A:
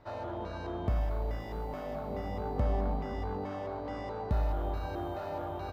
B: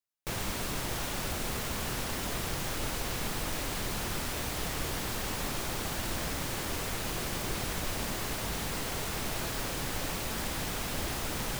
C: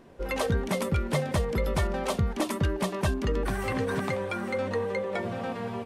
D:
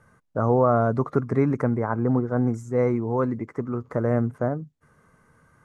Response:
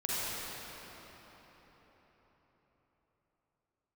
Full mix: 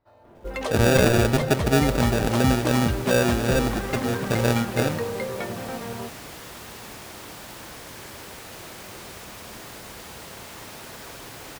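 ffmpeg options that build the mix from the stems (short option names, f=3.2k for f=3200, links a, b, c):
-filter_complex "[0:a]volume=-15.5dB[a];[1:a]highpass=43,lowshelf=f=170:g=-7.5,adelay=1450,volume=-10.5dB,asplit=2[b][c];[c]volume=-4dB[d];[2:a]highshelf=f=6.5k:g=12,adynamicsmooth=sensitivity=3:basefreq=3.3k,adelay=250,volume=-0.5dB[e];[3:a]acrusher=samples=42:mix=1:aa=0.000001,adelay=350,volume=0.5dB,asplit=2[f][g];[g]volume=-19.5dB[h];[4:a]atrim=start_sample=2205[i];[d][h]amix=inputs=2:normalize=0[j];[j][i]afir=irnorm=-1:irlink=0[k];[a][b][e][f][k]amix=inputs=5:normalize=0,acrusher=bits=7:mode=log:mix=0:aa=0.000001"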